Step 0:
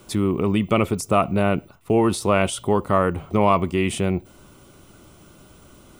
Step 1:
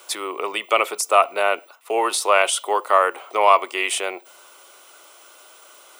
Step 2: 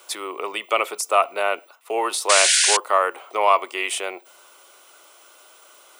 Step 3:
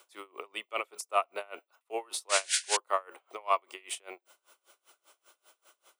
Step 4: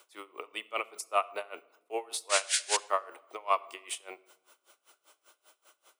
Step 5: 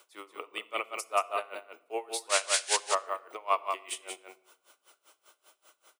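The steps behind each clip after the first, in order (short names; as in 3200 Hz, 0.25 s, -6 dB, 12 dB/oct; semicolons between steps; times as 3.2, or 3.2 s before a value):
Bessel high-pass 760 Hz, order 6; gain +7 dB
painted sound noise, 2.29–2.77, 1400–10000 Hz -15 dBFS; gain -2.5 dB
dB-linear tremolo 5.1 Hz, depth 28 dB; gain -8 dB
shoebox room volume 3900 m³, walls furnished, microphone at 0.51 m
echo 0.181 s -5.5 dB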